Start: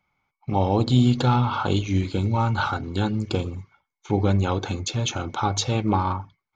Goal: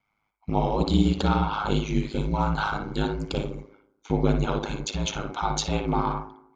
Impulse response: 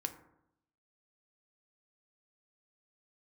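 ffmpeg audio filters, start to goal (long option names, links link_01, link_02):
-filter_complex "[0:a]asplit=2[link_01][link_02];[link_02]acrossover=split=260 3700:gain=0.0708 1 0.224[link_03][link_04][link_05];[link_03][link_04][link_05]amix=inputs=3:normalize=0[link_06];[1:a]atrim=start_sample=2205,adelay=58[link_07];[link_06][link_07]afir=irnorm=-1:irlink=0,volume=-4.5dB[link_08];[link_01][link_08]amix=inputs=2:normalize=0,aeval=exprs='val(0)*sin(2*PI*52*n/s)':channel_layout=same"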